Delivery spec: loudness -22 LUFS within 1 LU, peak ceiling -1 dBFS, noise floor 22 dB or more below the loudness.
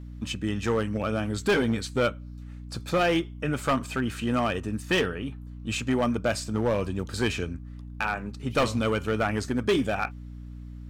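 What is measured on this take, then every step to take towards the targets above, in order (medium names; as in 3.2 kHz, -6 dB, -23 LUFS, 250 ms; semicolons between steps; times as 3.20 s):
clipped samples 1.4%; clipping level -18.0 dBFS; hum 60 Hz; highest harmonic 300 Hz; hum level -38 dBFS; loudness -27.5 LUFS; peak level -18.0 dBFS; loudness target -22.0 LUFS
-> clip repair -18 dBFS; hum notches 60/120/180/240/300 Hz; trim +5.5 dB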